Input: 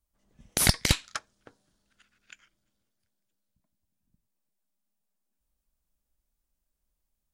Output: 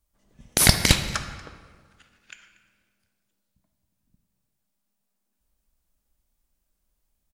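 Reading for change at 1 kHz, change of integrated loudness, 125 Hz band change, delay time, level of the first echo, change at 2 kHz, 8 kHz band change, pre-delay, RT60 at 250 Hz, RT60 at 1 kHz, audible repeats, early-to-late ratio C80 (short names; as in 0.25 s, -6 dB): +6.5 dB, +5.0 dB, +6.0 dB, 0.236 s, -21.5 dB, +6.5 dB, +6.0 dB, 17 ms, 1.6 s, 1.7 s, 1, 10.0 dB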